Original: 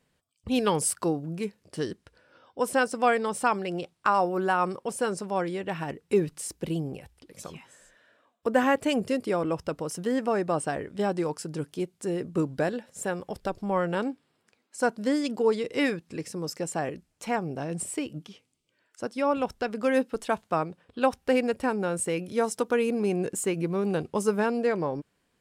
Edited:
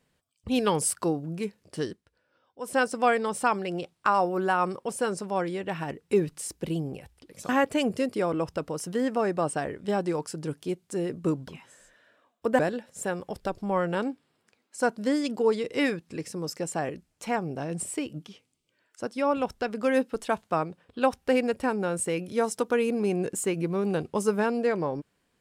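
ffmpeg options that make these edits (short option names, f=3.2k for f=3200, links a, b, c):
-filter_complex "[0:a]asplit=6[a][b][c][d][e][f];[a]atrim=end=2.02,asetpts=PTS-STARTPTS,afade=t=out:st=1.84:d=0.18:silence=0.266073[g];[b]atrim=start=2.02:end=2.61,asetpts=PTS-STARTPTS,volume=-11.5dB[h];[c]atrim=start=2.61:end=7.492,asetpts=PTS-STARTPTS,afade=t=in:d=0.18:silence=0.266073[i];[d]atrim=start=8.598:end=12.592[j];[e]atrim=start=7.488:end=8.602[k];[f]atrim=start=12.588[l];[g][h][i]concat=n=3:v=0:a=1[m];[m][j]acrossfade=d=0.004:c1=hsin:c2=hsin[n];[n][k]acrossfade=d=0.004:c1=hsin:c2=hsin[o];[o][l]acrossfade=d=0.004:c1=hsin:c2=hsin"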